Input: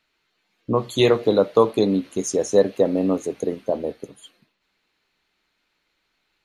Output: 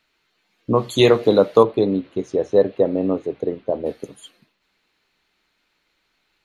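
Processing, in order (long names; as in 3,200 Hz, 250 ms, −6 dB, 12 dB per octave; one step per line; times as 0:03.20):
0:01.63–0:03.86: drawn EQ curve 140 Hz 0 dB, 220 Hz −6 dB, 360 Hz −1 dB, 3,900 Hz −8 dB, 7,100 Hz −28 dB
level +3 dB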